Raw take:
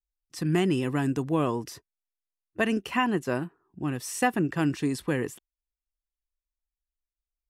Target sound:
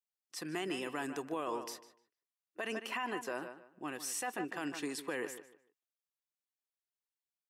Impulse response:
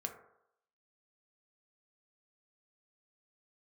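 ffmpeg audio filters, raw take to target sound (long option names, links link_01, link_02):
-filter_complex "[0:a]highpass=490,asplit=2[link_01][link_02];[link_02]adelay=150,lowpass=frequency=3500:poles=1,volume=-12.5dB,asplit=2[link_03][link_04];[link_04]adelay=150,lowpass=frequency=3500:poles=1,volume=0.25,asplit=2[link_05][link_06];[link_06]adelay=150,lowpass=frequency=3500:poles=1,volume=0.25[link_07];[link_03][link_05][link_07]amix=inputs=3:normalize=0[link_08];[link_01][link_08]amix=inputs=2:normalize=0,alimiter=limit=-24dB:level=0:latency=1:release=28,volume=-3.5dB"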